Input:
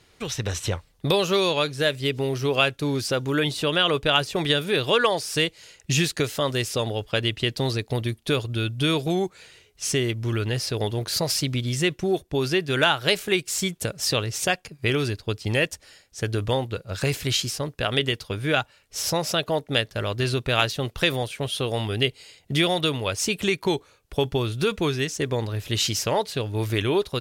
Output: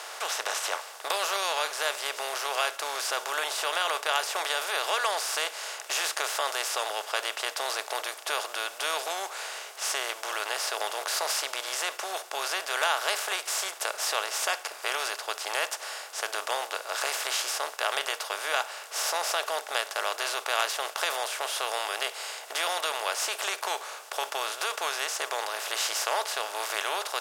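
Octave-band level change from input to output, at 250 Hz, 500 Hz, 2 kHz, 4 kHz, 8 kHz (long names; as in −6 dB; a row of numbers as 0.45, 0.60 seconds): −27.0, −10.0, −2.5, −4.5, +0.5 decibels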